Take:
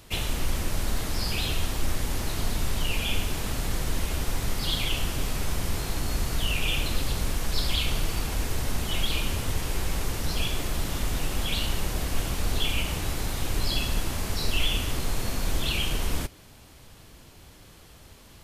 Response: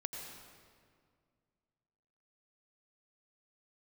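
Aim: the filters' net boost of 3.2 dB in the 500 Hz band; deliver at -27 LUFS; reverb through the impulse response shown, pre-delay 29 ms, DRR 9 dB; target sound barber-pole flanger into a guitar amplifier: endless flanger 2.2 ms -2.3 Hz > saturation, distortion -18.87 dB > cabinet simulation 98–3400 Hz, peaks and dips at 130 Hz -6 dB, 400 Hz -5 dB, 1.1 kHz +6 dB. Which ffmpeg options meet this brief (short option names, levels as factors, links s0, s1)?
-filter_complex "[0:a]equalizer=f=500:t=o:g=6,asplit=2[s0][s1];[1:a]atrim=start_sample=2205,adelay=29[s2];[s1][s2]afir=irnorm=-1:irlink=0,volume=0.376[s3];[s0][s3]amix=inputs=2:normalize=0,asplit=2[s4][s5];[s5]adelay=2.2,afreqshift=-2.3[s6];[s4][s6]amix=inputs=2:normalize=1,asoftclip=threshold=0.0891,highpass=98,equalizer=f=130:t=q:w=4:g=-6,equalizer=f=400:t=q:w=4:g=-5,equalizer=f=1100:t=q:w=4:g=6,lowpass=f=3400:w=0.5412,lowpass=f=3400:w=1.3066,volume=2.82"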